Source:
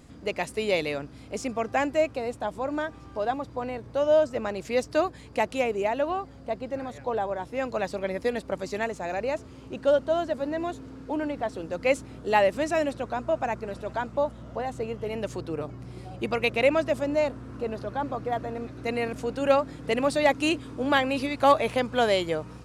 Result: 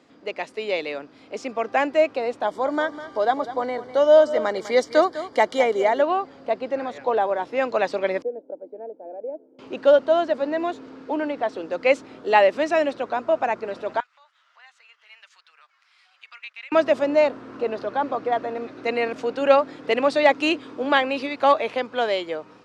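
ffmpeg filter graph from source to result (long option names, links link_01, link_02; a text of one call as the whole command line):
ffmpeg -i in.wav -filter_complex "[0:a]asettb=1/sr,asplit=3[link_01][link_02][link_03];[link_01]atrim=end=2.454[link_04];[link_02]atrim=start=2.45:end=6.02,asetpts=PTS-STARTPTS,afade=type=in:duration=0.004:curve=qsin,afade=type=out:start_time=3.566:duration=0.004:curve=qsin,asuperstop=centerf=2600:order=8:qfactor=5.1,highshelf=frequency=8100:gain=12,aecho=1:1:202:0.211,atrim=end_sample=157437[link_05];[link_03]atrim=start=6.016[link_06];[link_04][link_05]acrossfade=duration=0.004:curve1=hsin:curve2=qsin[link_07];[link_07][link_06]acrossfade=duration=0.004:curve1=qsin:curve2=hsin,asettb=1/sr,asplit=3[link_08][link_09][link_10];[link_08]atrim=end=8.224[link_11];[link_09]atrim=start=8.22:end=9.59,asetpts=PTS-STARTPTS,afade=type=in:duration=0.004:curve=qsin,afade=type=out:start_time=1.366:duration=0.004:curve=qsin,asuperpass=centerf=380:order=4:qfactor=2.4,aecho=1:1:1.3:0.85,atrim=end_sample=60417[link_12];[link_10]atrim=start=9.586[link_13];[link_11][link_12]acrossfade=duration=0.004:curve1=hsin:curve2=qsin[link_14];[link_14][link_13]acrossfade=duration=0.004:curve1=qsin:curve2=hsin,asettb=1/sr,asplit=3[link_15][link_16][link_17];[link_15]atrim=end=14.004[link_18];[link_16]atrim=start=14:end=16.72,asetpts=PTS-STARTPTS,afade=type=in:duration=0.004:curve=qsin,afade=type=out:start_time=2.716:duration=0.004:curve=qsin,agate=range=-8dB:threshold=-35dB:ratio=16:release=100:detection=peak,acompressor=threshold=-43dB:ratio=3:attack=3.2:release=140:knee=1:detection=peak,highpass=frequency=1400:width=0.5412,highpass=frequency=1400:width=1.3066[link_19];[link_17]atrim=start=16.716[link_20];[link_18][link_19]acrossfade=duration=0.004:curve1=hsin:curve2=qsin[link_21];[link_21][link_20]acrossfade=duration=0.004:curve1=qsin:curve2=hsin,highpass=75,dynaudnorm=framelen=200:gausssize=17:maxgain=7.5dB,acrossover=split=250 5700:gain=0.0794 1 0.0794[link_22][link_23][link_24];[link_22][link_23][link_24]amix=inputs=3:normalize=0" out.wav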